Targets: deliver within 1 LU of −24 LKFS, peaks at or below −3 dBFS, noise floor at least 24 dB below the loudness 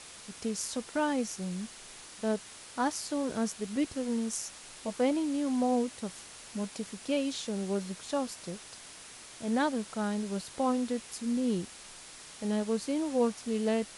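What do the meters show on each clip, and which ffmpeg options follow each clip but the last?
background noise floor −49 dBFS; target noise floor −57 dBFS; integrated loudness −33.0 LKFS; sample peak −16.0 dBFS; target loudness −24.0 LKFS
→ -af "afftdn=noise_reduction=8:noise_floor=-49"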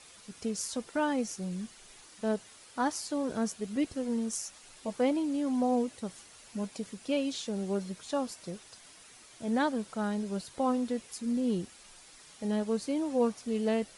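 background noise floor −55 dBFS; target noise floor −57 dBFS
→ -af "afftdn=noise_reduction=6:noise_floor=-55"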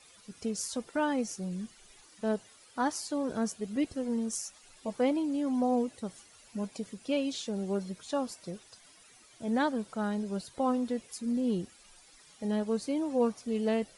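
background noise floor −58 dBFS; integrated loudness −33.0 LKFS; sample peak −16.0 dBFS; target loudness −24.0 LKFS
→ -af "volume=9dB"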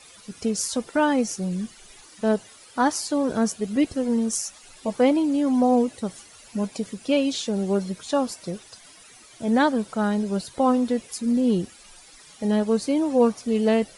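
integrated loudness −24.0 LKFS; sample peak −7.0 dBFS; background noise floor −49 dBFS

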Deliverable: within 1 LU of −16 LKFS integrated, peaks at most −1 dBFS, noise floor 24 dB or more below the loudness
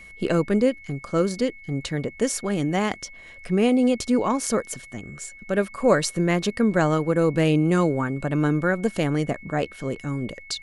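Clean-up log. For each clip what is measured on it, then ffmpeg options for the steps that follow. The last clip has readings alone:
interfering tone 2,200 Hz; level of the tone −43 dBFS; integrated loudness −23.5 LKFS; sample peak −5.5 dBFS; target loudness −16.0 LKFS
→ -af "bandreject=frequency=2200:width=30"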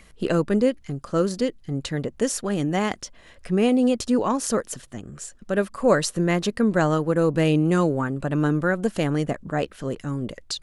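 interfering tone none found; integrated loudness −23.5 LKFS; sample peak −6.0 dBFS; target loudness −16.0 LKFS
→ -af "volume=7.5dB,alimiter=limit=-1dB:level=0:latency=1"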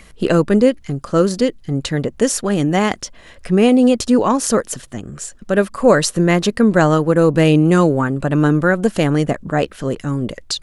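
integrated loudness −16.0 LKFS; sample peak −1.0 dBFS; background noise floor −44 dBFS

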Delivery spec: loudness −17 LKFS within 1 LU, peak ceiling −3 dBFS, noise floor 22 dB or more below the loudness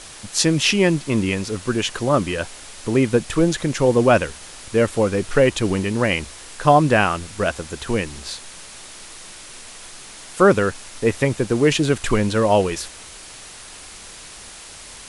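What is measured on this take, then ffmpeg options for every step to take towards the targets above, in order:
background noise floor −40 dBFS; target noise floor −42 dBFS; integrated loudness −19.5 LKFS; sample peak −1.0 dBFS; target loudness −17.0 LKFS
→ -af "afftdn=noise_reduction=6:noise_floor=-40"
-af "volume=2.5dB,alimiter=limit=-3dB:level=0:latency=1"

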